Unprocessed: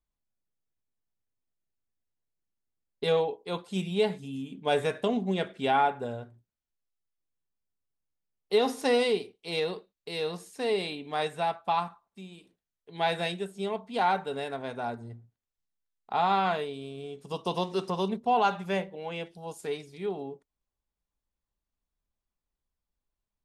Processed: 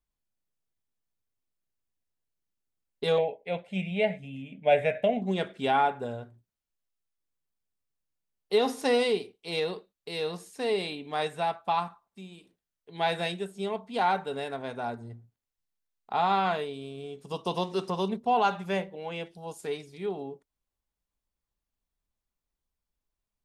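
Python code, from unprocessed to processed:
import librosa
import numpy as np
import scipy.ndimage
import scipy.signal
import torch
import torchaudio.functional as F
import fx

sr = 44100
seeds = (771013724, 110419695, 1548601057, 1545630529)

y = fx.curve_eq(x, sr, hz=(190.0, 380.0, 620.0, 1100.0, 2200.0, 4400.0), db=(0, -10, 11, -15, 10, -14), at=(3.18, 5.22))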